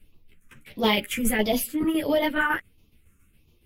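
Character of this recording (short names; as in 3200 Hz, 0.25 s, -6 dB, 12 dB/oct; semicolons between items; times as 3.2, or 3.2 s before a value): phasing stages 4, 1.5 Hz, lowest notch 710–1500 Hz; tremolo saw down 7.2 Hz, depth 60%; a shimmering, thickened sound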